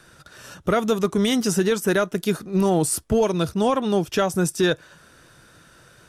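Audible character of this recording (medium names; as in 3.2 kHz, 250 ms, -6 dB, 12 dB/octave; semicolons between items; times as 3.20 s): noise floor -52 dBFS; spectral tilt -5.0 dB/octave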